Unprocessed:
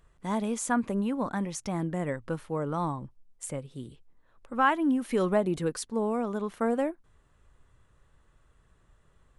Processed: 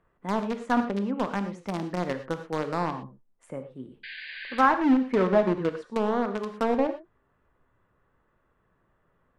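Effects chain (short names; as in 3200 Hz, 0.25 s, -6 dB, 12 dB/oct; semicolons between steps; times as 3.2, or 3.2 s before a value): painted sound noise, 4.03–4.67, 1500–4900 Hz -33 dBFS; three-band isolator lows -12 dB, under 150 Hz, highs -22 dB, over 2300 Hz; in parallel at -6.5 dB: bit-crush 4-bit; on the sum: treble ducked by the level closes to 2300 Hz, closed at -20.5 dBFS; non-linear reverb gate 0.14 s flat, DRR 8 dB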